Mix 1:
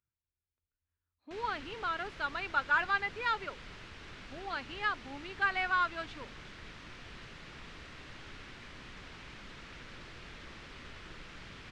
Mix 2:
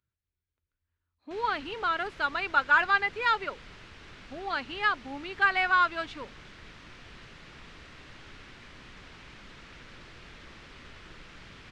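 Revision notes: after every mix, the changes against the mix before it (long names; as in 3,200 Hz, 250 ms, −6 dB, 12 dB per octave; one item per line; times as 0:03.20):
speech +6.5 dB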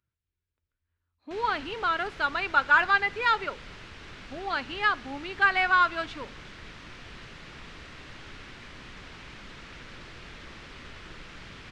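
background +4.0 dB
reverb: on, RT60 0.70 s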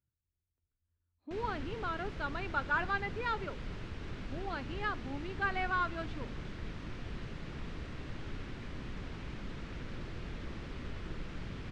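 speech −7.5 dB
master: add tilt shelving filter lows +7 dB, about 650 Hz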